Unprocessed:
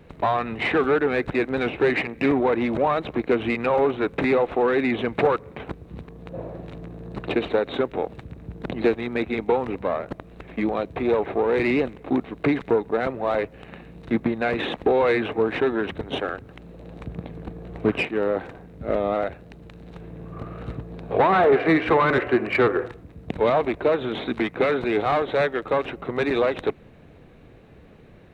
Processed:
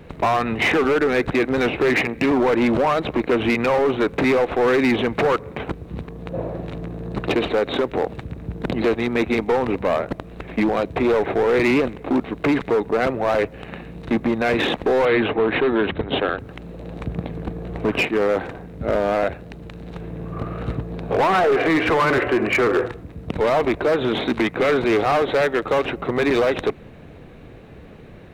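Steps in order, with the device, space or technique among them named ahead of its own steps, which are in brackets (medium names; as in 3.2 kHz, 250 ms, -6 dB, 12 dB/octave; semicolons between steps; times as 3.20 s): limiter into clipper (peak limiter -15.5 dBFS, peak gain reduction 6.5 dB; hard clipper -21 dBFS, distortion -14 dB); 15.05–16.39 s: steep low-pass 4.1 kHz 72 dB/octave; trim +7 dB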